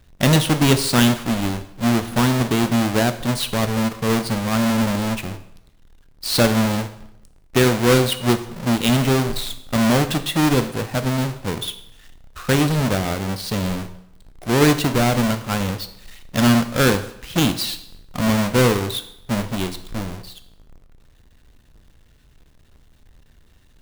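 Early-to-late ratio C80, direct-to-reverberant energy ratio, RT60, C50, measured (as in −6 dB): 15.5 dB, 9.5 dB, 0.75 s, 13.0 dB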